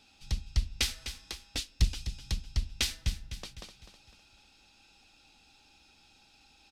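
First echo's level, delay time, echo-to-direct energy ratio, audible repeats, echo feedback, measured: -11.0 dB, 0.253 s, -10.0 dB, 4, 45%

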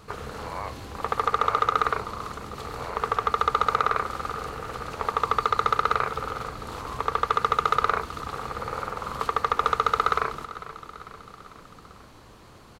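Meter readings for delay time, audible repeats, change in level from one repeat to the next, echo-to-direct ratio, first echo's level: 0.447 s, 4, -4.5 dB, -14.0 dB, -15.5 dB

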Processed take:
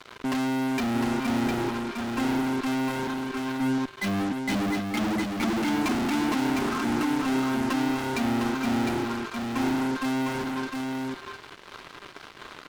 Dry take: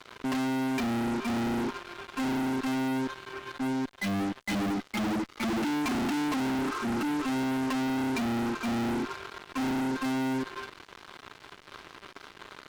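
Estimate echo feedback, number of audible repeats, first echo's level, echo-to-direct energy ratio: no steady repeat, 1, -4.5 dB, -4.5 dB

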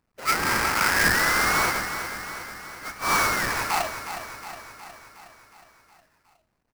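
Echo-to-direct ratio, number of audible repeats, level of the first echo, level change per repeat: -8.0 dB, 6, -10.0 dB, -4.5 dB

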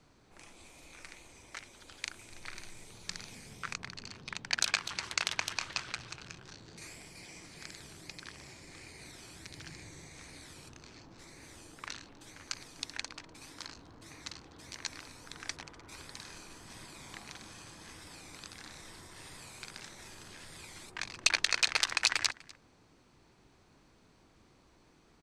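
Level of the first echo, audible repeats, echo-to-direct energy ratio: -23.0 dB, 1, -23.0 dB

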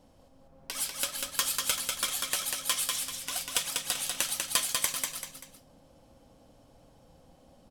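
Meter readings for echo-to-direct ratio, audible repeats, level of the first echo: -3.0 dB, 3, -3.5 dB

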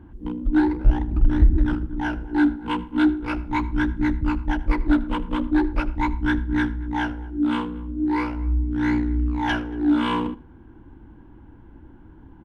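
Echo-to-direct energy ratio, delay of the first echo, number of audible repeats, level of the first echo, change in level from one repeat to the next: -20.0 dB, 79 ms, 2, -20.0 dB, -13.0 dB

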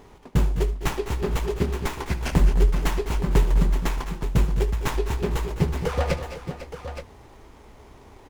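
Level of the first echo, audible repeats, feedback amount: -16.0 dB, 4, no steady repeat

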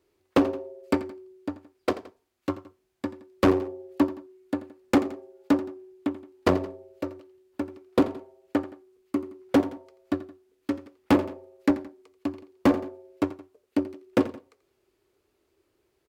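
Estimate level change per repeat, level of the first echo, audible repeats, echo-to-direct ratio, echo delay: -6.5 dB, -16.0 dB, 2, -15.0 dB, 85 ms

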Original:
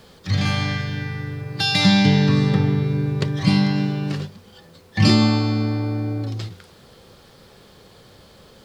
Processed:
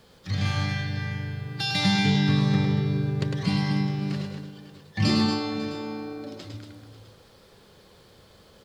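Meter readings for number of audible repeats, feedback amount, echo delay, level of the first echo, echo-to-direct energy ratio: 4, no steady repeat, 0.104 s, -4.0 dB, -2.5 dB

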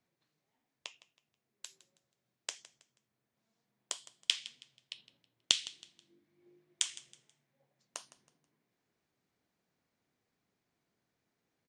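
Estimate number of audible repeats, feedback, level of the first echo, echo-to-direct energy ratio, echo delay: 2, 32%, -18.0 dB, -17.5 dB, 0.161 s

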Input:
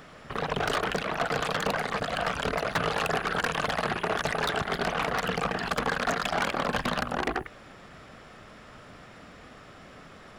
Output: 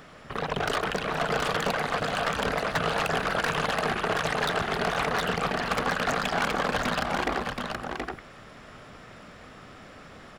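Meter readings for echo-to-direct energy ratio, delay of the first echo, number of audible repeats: -3.5 dB, 0.137 s, 3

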